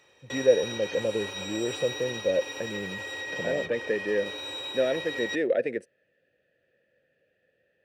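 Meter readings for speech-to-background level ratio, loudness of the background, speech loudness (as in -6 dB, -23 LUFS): 5.5 dB, -35.0 LUFS, -29.5 LUFS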